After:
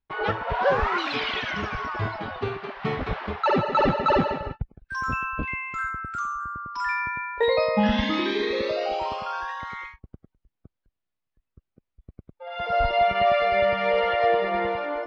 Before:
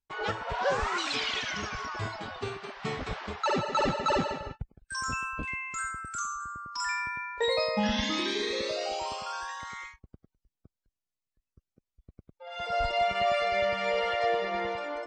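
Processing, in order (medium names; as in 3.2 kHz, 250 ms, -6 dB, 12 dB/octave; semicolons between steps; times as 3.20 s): distance through air 290 m; trim +7.5 dB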